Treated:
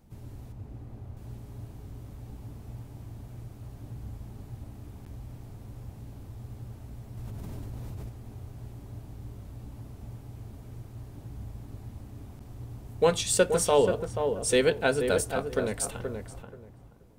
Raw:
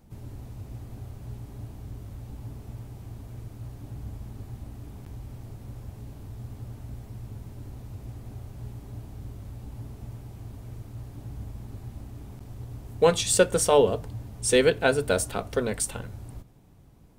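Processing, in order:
0:00.52–0:01.17: high-shelf EQ 2,700 Hz −10.5 dB
tape delay 480 ms, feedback 22%, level −5 dB, low-pass 1,300 Hz
0:07.17–0:08.09: envelope flattener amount 100%
level −3 dB

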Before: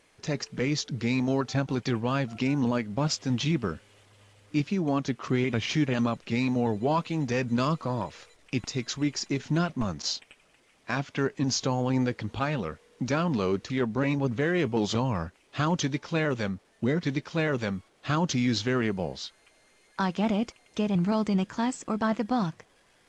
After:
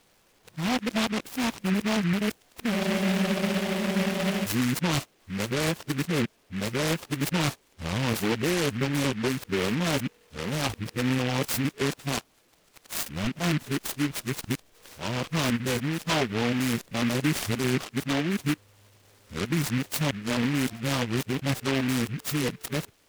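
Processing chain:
played backwards from end to start
frozen spectrum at 0:02.73, 1.71 s
short delay modulated by noise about 1,900 Hz, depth 0.18 ms

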